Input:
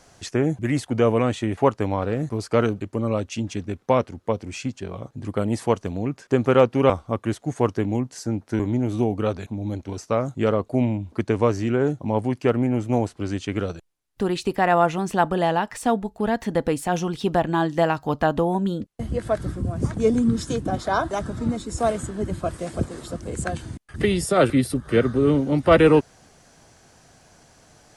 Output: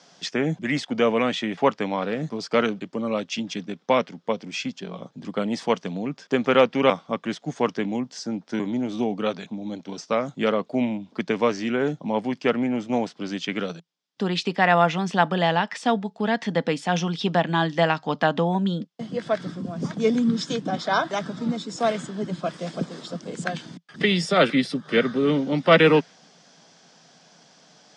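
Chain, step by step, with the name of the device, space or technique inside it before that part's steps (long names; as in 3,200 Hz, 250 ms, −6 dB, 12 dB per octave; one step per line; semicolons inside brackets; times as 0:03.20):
television speaker (loudspeaker in its box 170–6,800 Hz, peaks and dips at 170 Hz +7 dB, 350 Hz −5 dB, 3,400 Hz +8 dB, 5,100 Hz +7 dB)
dynamic equaliser 2,100 Hz, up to +7 dB, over −41 dBFS, Q 1.5
high-pass filter 110 Hz
level −1 dB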